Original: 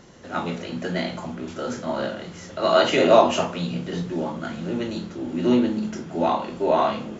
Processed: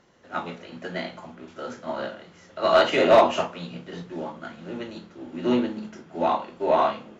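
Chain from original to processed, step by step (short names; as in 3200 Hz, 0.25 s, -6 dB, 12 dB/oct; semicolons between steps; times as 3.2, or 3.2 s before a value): hard clip -9.5 dBFS, distortion -18 dB; overdrive pedal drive 6 dB, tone 2700 Hz, clips at -9.5 dBFS; upward expander 1.5:1, over -38 dBFS; gain +2.5 dB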